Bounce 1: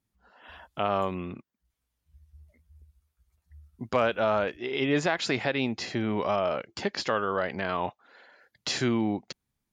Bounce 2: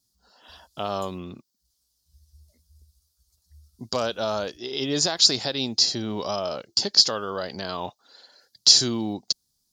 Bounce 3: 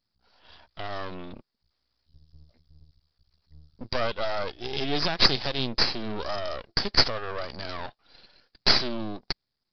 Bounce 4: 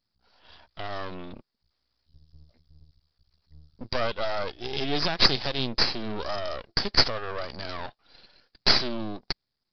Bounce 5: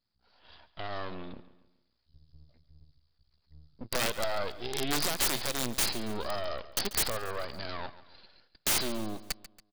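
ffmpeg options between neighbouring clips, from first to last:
ffmpeg -i in.wav -af "highshelf=frequency=3300:width_type=q:width=3:gain=13.5,volume=-1dB" out.wav
ffmpeg -i in.wav -af "aresample=11025,aeval=exprs='max(val(0),0)':channel_layout=same,aresample=44100,dynaudnorm=framelen=220:gausssize=11:maxgain=5dB" out.wav
ffmpeg -i in.wav -af anull out.wav
ffmpeg -i in.wav -af "aresample=11025,aresample=44100,aeval=exprs='(mod(7.08*val(0)+1,2)-1)/7.08':channel_layout=same,aecho=1:1:140|280|420|560:0.158|0.0682|0.0293|0.0126,volume=-3dB" out.wav

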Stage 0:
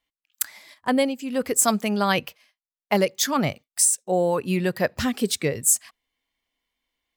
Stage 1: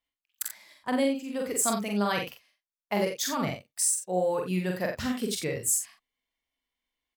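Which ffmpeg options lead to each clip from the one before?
ffmpeg -i in.wav -af "aecho=1:1:44|59|88:0.708|0.316|0.335,volume=-8.5dB" out.wav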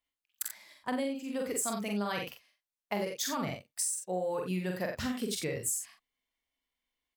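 ffmpeg -i in.wav -af "acompressor=threshold=-28dB:ratio=6,volume=-1.5dB" out.wav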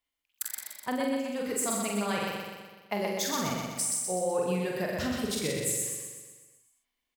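ffmpeg -i in.wav -af "aecho=1:1:125|250|375|500|625|750|875|1000:0.708|0.389|0.214|0.118|0.0648|0.0356|0.0196|0.0108,volume=1.5dB" out.wav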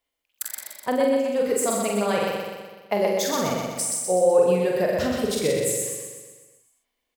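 ffmpeg -i in.wav -af "equalizer=frequency=520:width=1.4:gain=9,volume=3.5dB" out.wav

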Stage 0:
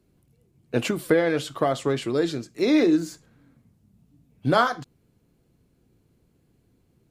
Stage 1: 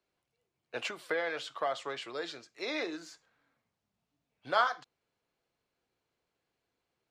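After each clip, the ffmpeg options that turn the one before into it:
ffmpeg -i in.wav -filter_complex "[0:a]acrossover=split=570 6400:gain=0.0708 1 0.141[link_01][link_02][link_03];[link_01][link_02][link_03]amix=inputs=3:normalize=0,volume=-5.5dB" out.wav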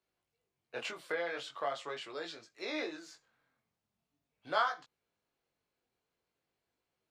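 ffmpeg -i in.wav -af "flanger=delay=18.5:depth=4.6:speed=0.42" out.wav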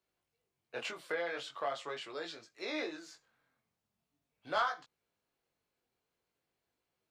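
ffmpeg -i in.wav -af "asoftclip=type=tanh:threshold=-21.5dB" out.wav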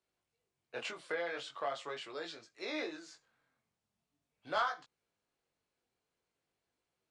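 ffmpeg -i in.wav -af "aresample=22050,aresample=44100,volume=-1dB" out.wav

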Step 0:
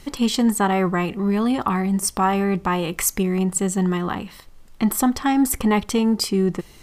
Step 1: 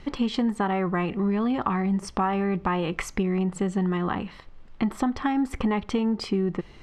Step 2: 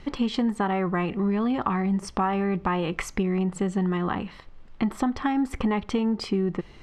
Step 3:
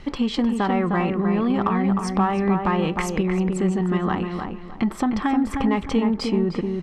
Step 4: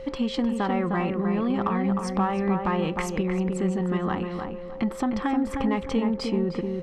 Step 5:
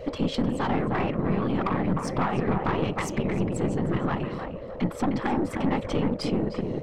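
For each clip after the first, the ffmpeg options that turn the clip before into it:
ffmpeg -i in.wav -af "lowpass=3000,acompressor=threshold=-21dB:ratio=6" out.wav
ffmpeg -i in.wav -af anull out.wav
ffmpeg -i in.wav -filter_complex "[0:a]asplit=2[link_01][link_02];[link_02]asoftclip=type=tanh:threshold=-21dB,volume=-6dB[link_03];[link_01][link_03]amix=inputs=2:normalize=0,asplit=2[link_04][link_05];[link_05]adelay=307,lowpass=frequency=1800:poles=1,volume=-4.5dB,asplit=2[link_06][link_07];[link_07]adelay=307,lowpass=frequency=1800:poles=1,volume=0.3,asplit=2[link_08][link_09];[link_09]adelay=307,lowpass=frequency=1800:poles=1,volume=0.3,asplit=2[link_10][link_11];[link_11]adelay=307,lowpass=frequency=1800:poles=1,volume=0.3[link_12];[link_04][link_06][link_08][link_10][link_12]amix=inputs=5:normalize=0" out.wav
ffmpeg -i in.wav -af "aeval=exprs='val(0)+0.0251*sin(2*PI*530*n/s)':channel_layout=same,volume=-4dB" out.wav
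ffmpeg -i in.wav -af "afftfilt=real='hypot(re,im)*cos(2*PI*random(0))':imag='hypot(re,im)*sin(2*PI*random(1))':win_size=512:overlap=0.75,aeval=exprs='(tanh(20*val(0)+0.6)-tanh(0.6))/20':channel_layout=same,volume=8.5dB" out.wav

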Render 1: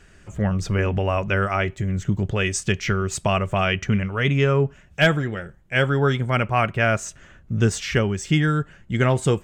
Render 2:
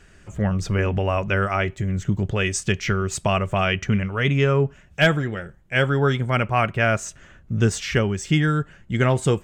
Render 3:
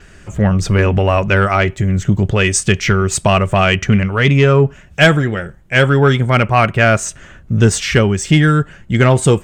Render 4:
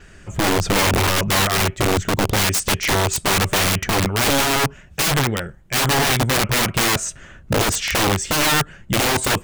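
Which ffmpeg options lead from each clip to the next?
ffmpeg -i in.wav -af anull out.wav
ffmpeg -i in.wav -af "acontrast=89,adynamicequalizer=threshold=0.00501:dfrequency=8700:dqfactor=5.9:tfrequency=8700:tqfactor=5.9:attack=5:release=100:ratio=0.375:range=3:mode=boostabove:tftype=bell,volume=2dB" out.wav
ffmpeg -i in.wav -af "aeval=exprs='(mod(3.16*val(0)+1,2)-1)/3.16':channel_layout=same,volume=-3dB" out.wav

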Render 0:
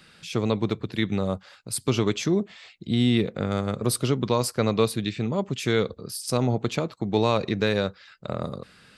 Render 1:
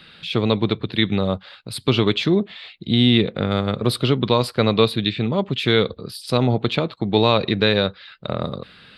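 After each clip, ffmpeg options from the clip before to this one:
ffmpeg -i in.wav -af "highshelf=frequency=4900:width_type=q:width=3:gain=-9,volume=5dB" out.wav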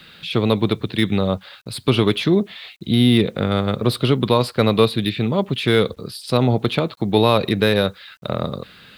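ffmpeg -i in.wav -filter_complex "[0:a]acrossover=split=680|2300[link_01][link_02][link_03];[link_03]asoftclip=type=tanh:threshold=-23.5dB[link_04];[link_01][link_02][link_04]amix=inputs=3:normalize=0,acrusher=bits=9:mix=0:aa=0.000001,volume=1.5dB" out.wav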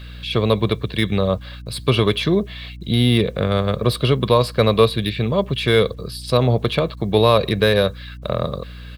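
ffmpeg -i in.wav -af "aeval=exprs='val(0)+0.0158*(sin(2*PI*60*n/s)+sin(2*PI*2*60*n/s)/2+sin(2*PI*3*60*n/s)/3+sin(2*PI*4*60*n/s)/4+sin(2*PI*5*60*n/s)/5)':channel_layout=same,aecho=1:1:1.8:0.42" out.wav

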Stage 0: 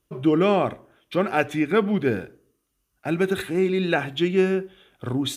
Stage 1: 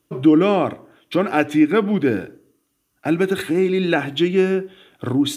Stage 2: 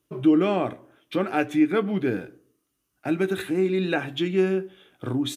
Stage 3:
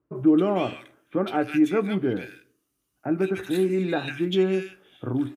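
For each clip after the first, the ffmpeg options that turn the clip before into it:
ffmpeg -i in.wav -filter_complex "[0:a]highpass=91,equalizer=frequency=300:width=7.1:gain=9,asplit=2[link_01][link_02];[link_02]acompressor=threshold=-26dB:ratio=6,volume=-0.5dB[link_03];[link_01][link_03]amix=inputs=2:normalize=0" out.wav
ffmpeg -i in.wav -filter_complex "[0:a]asplit=2[link_01][link_02];[link_02]adelay=16,volume=-11dB[link_03];[link_01][link_03]amix=inputs=2:normalize=0,volume=-6.5dB" out.wav
ffmpeg -i in.wav -filter_complex "[0:a]acrossover=split=1700[link_01][link_02];[link_02]adelay=150[link_03];[link_01][link_03]amix=inputs=2:normalize=0" out.wav

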